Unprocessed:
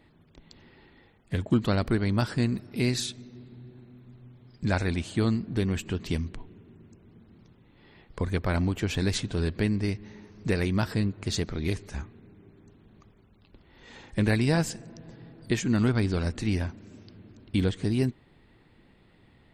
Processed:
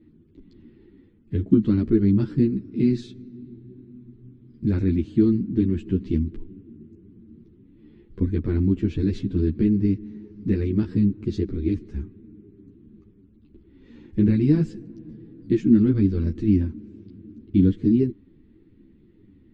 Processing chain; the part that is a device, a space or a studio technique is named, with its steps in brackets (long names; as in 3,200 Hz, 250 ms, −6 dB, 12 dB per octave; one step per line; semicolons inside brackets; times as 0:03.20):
string-machine ensemble chorus (string-ensemble chorus; low-pass filter 4,100 Hz 12 dB per octave)
low shelf with overshoot 470 Hz +13.5 dB, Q 3
level −7.5 dB